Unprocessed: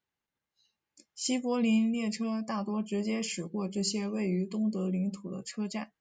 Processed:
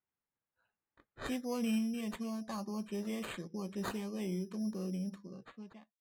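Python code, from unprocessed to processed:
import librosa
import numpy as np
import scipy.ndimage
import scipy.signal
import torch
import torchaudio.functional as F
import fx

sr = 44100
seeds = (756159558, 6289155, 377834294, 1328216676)

y = fx.fade_out_tail(x, sr, length_s=0.98)
y = np.repeat(y[::8], 8)[:len(y)]
y = fx.env_lowpass(y, sr, base_hz=2300.0, full_db=-28.0)
y = F.gain(torch.from_numpy(y), -7.0).numpy()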